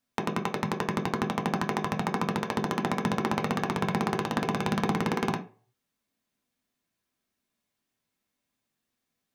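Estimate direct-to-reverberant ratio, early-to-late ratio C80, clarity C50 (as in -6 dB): 1.5 dB, 17.5 dB, 11.5 dB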